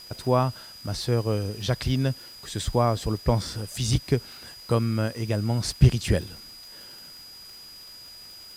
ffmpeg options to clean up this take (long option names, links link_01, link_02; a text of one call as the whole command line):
ffmpeg -i in.wav -af "adeclick=threshold=4,bandreject=frequency=4900:width=30,afwtdn=0.0028" out.wav